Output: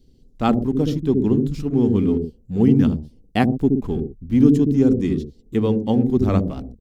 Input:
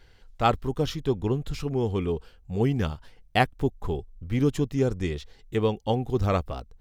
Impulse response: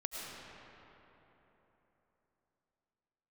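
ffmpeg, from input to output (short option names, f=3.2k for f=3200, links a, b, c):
-filter_complex "[0:a]equalizer=f=240:t=o:w=1.1:g=14,acrossover=split=490|3700[a][b][c];[a]aecho=1:1:72.89|122.4:0.891|0.501[d];[b]aeval=exprs='sgn(val(0))*max(abs(val(0))-0.00376,0)':c=same[e];[d][e][c]amix=inputs=3:normalize=0,volume=-1.5dB"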